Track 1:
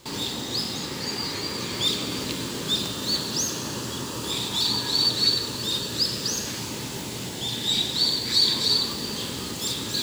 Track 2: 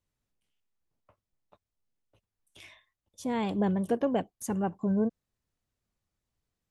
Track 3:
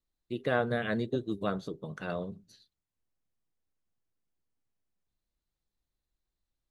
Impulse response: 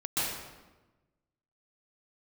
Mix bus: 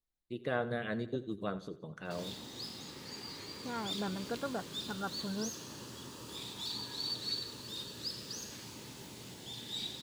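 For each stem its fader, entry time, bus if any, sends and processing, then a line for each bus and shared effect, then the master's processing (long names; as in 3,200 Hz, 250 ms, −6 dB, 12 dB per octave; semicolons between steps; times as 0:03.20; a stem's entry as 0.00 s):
−16.0 dB, 2.05 s, no send, no echo send, notch filter 7,500 Hz, Q 24
−12.0 dB, 0.40 s, no send, no echo send, low-pass that shuts in the quiet parts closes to 980 Hz; low-pass with resonance 1,400 Hz, resonance Q 12
−5.5 dB, 0.00 s, no send, echo send −16.5 dB, no processing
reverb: not used
echo: repeating echo 87 ms, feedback 42%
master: no processing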